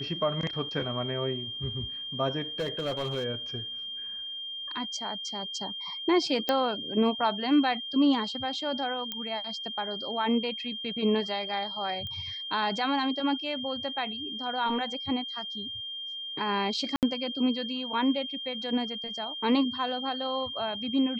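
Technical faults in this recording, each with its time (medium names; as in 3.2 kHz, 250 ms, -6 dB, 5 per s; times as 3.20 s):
whine 3.2 kHz -35 dBFS
2.59–3.25 s: clipped -26 dBFS
6.49 s: pop -12 dBFS
9.12 s: pop -18 dBFS
12.07 s: pop -26 dBFS
16.96–17.03 s: dropout 68 ms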